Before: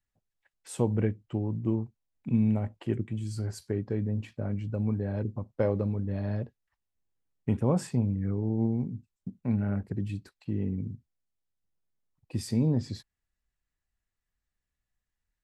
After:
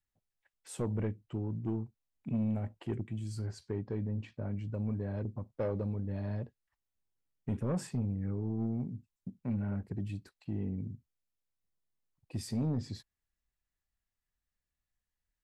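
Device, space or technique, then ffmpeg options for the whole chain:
saturation between pre-emphasis and de-emphasis: -filter_complex "[0:a]highshelf=f=5.8k:g=9,asoftclip=type=tanh:threshold=-22dB,highshelf=f=5.8k:g=-9,asettb=1/sr,asplit=3[a][b][c];[a]atrim=end=3.464[d];[b]atrim=start=3.46:end=4.57,asetpts=PTS-STARTPTS,afade=t=in:d=0.004:c=qsin,afade=t=out:st=1.106:d=0.004:c=qsin,lowpass=6k[e];[c]atrim=start=4.566[f];[d][e]acrossfade=d=0.004:c1=hsin:c2=qsin[g];[g][f]acrossfade=d=0.004:c1=qsin:c2=hsin,volume=-4dB"

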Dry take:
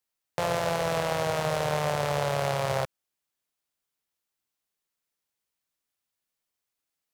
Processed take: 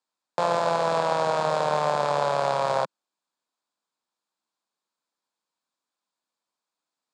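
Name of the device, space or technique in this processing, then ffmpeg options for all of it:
television speaker: -af "highpass=f=190:w=0.5412,highpass=f=190:w=1.3066,equalizer=f=410:t=q:w=4:g=-4,equalizer=f=990:t=q:w=4:g=6,equalizer=f=2k:t=q:w=4:g=-9,equalizer=f=2.9k:t=q:w=4:g=-8,equalizer=f=5.9k:t=q:w=4:g=-8,lowpass=f=7.3k:w=0.5412,lowpass=f=7.3k:w=1.3066,volume=4dB"

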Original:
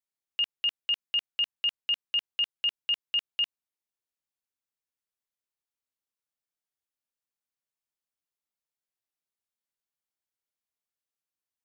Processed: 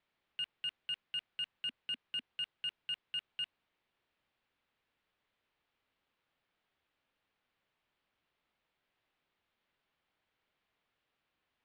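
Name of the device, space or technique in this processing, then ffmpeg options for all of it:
synthesiser wavefolder: -filter_complex "[0:a]asettb=1/sr,asplit=3[a][b][c];[a]atrim=end=1.684[d];[b]atrim=start=1.68:end=2.28,asetpts=PTS-STARTPTS,afade=t=in:d=0.004:c=qsin,afade=t=out:st=0.596:d=0.004:c=qsin,equalizer=f=250:t=o:w=0.31:g=-5[e];[c]atrim=start=2.276[f];[d][e]acrossfade=d=0.004:c1=hsin:c2=qsin[g];[g][f]acrossfade=d=0.004:c1=qsin:c2=hsin,aeval=exprs='0.0178*(abs(mod(val(0)/0.0178+3,4)-2)-1)':c=same,lowpass=f=3.4k:w=0.5412,lowpass=f=3.4k:w=1.3066,volume=16dB"

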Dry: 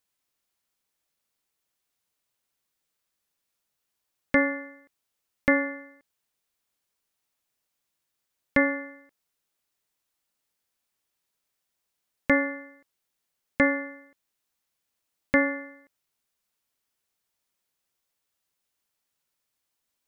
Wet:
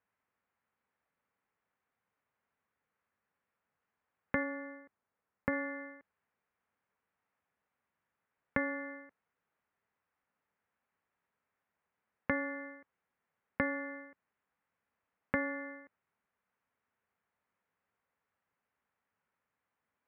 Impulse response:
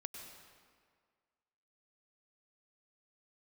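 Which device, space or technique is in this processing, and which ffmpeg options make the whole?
bass amplifier: -filter_complex "[0:a]acompressor=threshold=-35dB:ratio=4,highpass=77,equalizer=f=130:t=q:w=4:g=-5,equalizer=f=330:t=q:w=4:g=-8,equalizer=f=620:t=q:w=4:g=-3,lowpass=f=2k:w=0.5412,lowpass=f=2k:w=1.3066,asettb=1/sr,asplit=3[a][b][c];[a]atrim=end=4.434[d];[b]atrim=start=4.43:end=5.53,asetpts=PTS-STARTPTS,afade=t=in:d=0.004:c=qsin,afade=t=out:st=1.096:d=0.004:c=qsin,highshelf=f=2.6k:g=-10[e];[c]atrim=start=5.526[f];[d][e]acrossfade=d=0.004:c1=hsin:c2=qsin[g];[g][f]acrossfade=d=0.004:c1=qsin:c2=hsin,volume=4.5dB"

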